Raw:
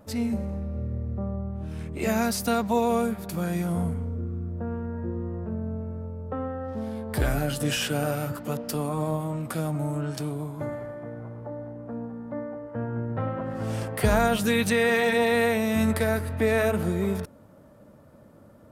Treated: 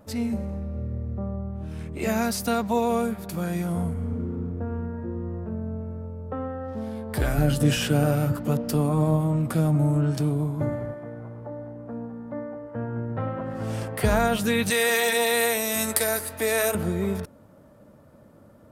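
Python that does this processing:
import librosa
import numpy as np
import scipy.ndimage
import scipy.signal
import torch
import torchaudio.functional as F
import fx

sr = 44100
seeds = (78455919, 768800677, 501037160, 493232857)

y = fx.reverb_throw(x, sr, start_s=3.92, length_s=0.46, rt60_s=2.7, drr_db=-2.5)
y = fx.low_shelf(y, sr, hz=370.0, db=9.5, at=(7.38, 10.94))
y = fx.bass_treble(y, sr, bass_db=-14, treble_db=15, at=(14.7, 16.75))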